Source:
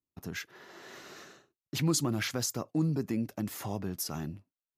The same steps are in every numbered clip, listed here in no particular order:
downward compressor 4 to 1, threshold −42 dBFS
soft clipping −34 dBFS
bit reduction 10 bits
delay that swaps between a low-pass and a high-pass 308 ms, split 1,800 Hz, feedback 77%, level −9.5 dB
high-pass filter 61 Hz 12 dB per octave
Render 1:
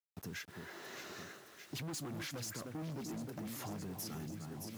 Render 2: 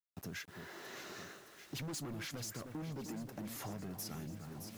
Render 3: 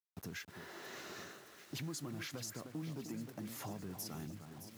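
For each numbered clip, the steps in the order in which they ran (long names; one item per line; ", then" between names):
delay that swaps between a low-pass and a high-pass, then soft clipping, then downward compressor, then bit reduction, then high-pass filter
high-pass filter, then soft clipping, then delay that swaps between a low-pass and a high-pass, then bit reduction, then downward compressor
downward compressor, then delay that swaps between a low-pass and a high-pass, then soft clipping, then bit reduction, then high-pass filter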